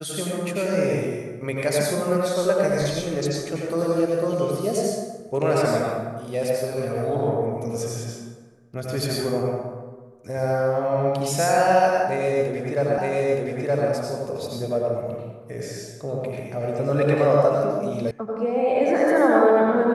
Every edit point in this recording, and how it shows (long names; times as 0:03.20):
0:12.98: the same again, the last 0.92 s
0:18.11: cut off before it has died away